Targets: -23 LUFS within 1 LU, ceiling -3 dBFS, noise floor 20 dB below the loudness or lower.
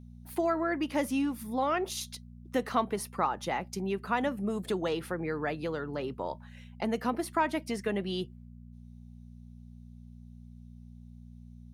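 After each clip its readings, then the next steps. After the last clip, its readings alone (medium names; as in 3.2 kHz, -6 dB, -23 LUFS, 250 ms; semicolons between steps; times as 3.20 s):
hum 60 Hz; highest harmonic 240 Hz; hum level -46 dBFS; loudness -32.5 LUFS; peak level -14.0 dBFS; loudness target -23.0 LUFS
-> de-hum 60 Hz, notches 4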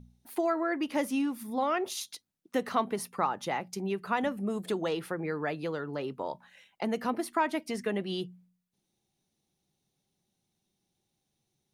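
hum not found; loudness -32.5 LUFS; peak level -14.5 dBFS; loudness target -23.0 LUFS
-> trim +9.5 dB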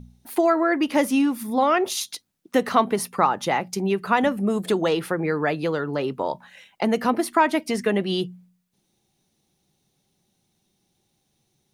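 loudness -23.0 LUFS; peak level -5.0 dBFS; noise floor -72 dBFS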